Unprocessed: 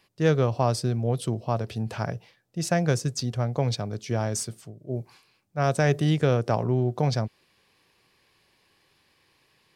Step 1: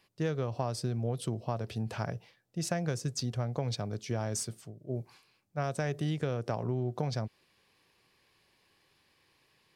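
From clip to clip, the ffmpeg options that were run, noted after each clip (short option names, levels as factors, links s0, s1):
-af "acompressor=threshold=0.0631:ratio=6,volume=0.631"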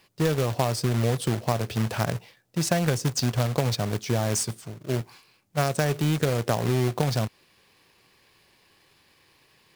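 -af "acrusher=bits=2:mode=log:mix=0:aa=0.000001,volume=2.51"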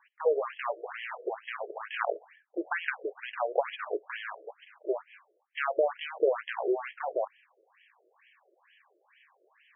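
-af "afftfilt=real='re*between(b*sr/1024,460*pow(2400/460,0.5+0.5*sin(2*PI*2.2*pts/sr))/1.41,460*pow(2400/460,0.5+0.5*sin(2*PI*2.2*pts/sr))*1.41)':imag='im*between(b*sr/1024,460*pow(2400/460,0.5+0.5*sin(2*PI*2.2*pts/sr))/1.41,460*pow(2400/460,0.5+0.5*sin(2*PI*2.2*pts/sr))*1.41)':win_size=1024:overlap=0.75,volume=1.5"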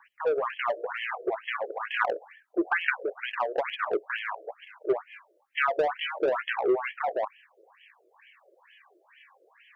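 -filter_complex "[0:a]aphaser=in_gain=1:out_gain=1:delay=4.3:decay=0.38:speed=0.26:type=triangular,acrossover=split=350|970|980[s0][s1][s2][s3];[s1]asoftclip=type=tanh:threshold=0.0251[s4];[s0][s4][s2][s3]amix=inputs=4:normalize=0,volume=1.88"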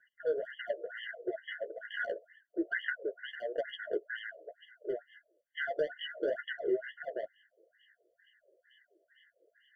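-af "flanger=delay=6:depth=6.9:regen=-16:speed=1.7:shape=sinusoidal,afftfilt=real='re*eq(mod(floor(b*sr/1024/700),2),0)':imag='im*eq(mod(floor(b*sr/1024/700),2),0)':win_size=1024:overlap=0.75,volume=0.708"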